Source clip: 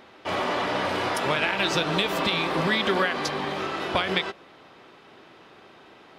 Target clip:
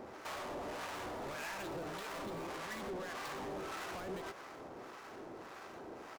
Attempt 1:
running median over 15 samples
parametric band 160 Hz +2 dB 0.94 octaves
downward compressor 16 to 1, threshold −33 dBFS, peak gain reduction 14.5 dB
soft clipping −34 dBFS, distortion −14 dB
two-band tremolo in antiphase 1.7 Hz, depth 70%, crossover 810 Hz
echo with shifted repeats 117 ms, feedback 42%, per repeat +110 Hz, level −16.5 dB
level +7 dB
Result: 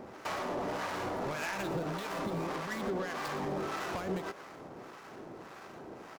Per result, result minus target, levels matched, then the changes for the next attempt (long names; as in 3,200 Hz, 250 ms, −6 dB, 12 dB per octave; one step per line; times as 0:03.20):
soft clipping: distortion −8 dB; 125 Hz band +3.0 dB
change: soft clipping −45 dBFS, distortion −5 dB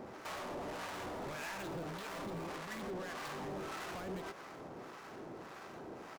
125 Hz band +4.0 dB
change: parametric band 160 Hz −5 dB 0.94 octaves